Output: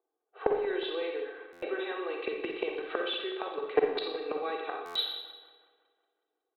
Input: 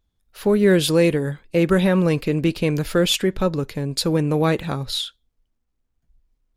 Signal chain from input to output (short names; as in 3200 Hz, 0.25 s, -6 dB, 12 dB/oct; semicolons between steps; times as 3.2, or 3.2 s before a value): steep high-pass 390 Hz 36 dB/oct; low-pass opened by the level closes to 620 Hz, open at -18.5 dBFS; gate -45 dBFS, range -7 dB; comb 2.6 ms, depth 99%; in parallel at +2.5 dB: compressor 6:1, threshold -24 dBFS, peak gain reduction 13 dB; on the sum: flipped gate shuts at -14 dBFS, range -24 dB; rippled Chebyshev low-pass 4000 Hz, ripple 3 dB; soft clip -17 dBFS, distortion -19 dB; split-band echo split 2200 Hz, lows 0.184 s, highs 86 ms, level -13 dB; on a send at -2 dB: reverb RT60 0.75 s, pre-delay 40 ms; on the sum: stuck buffer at 1.52/4.85, samples 512, times 8; gain +4.5 dB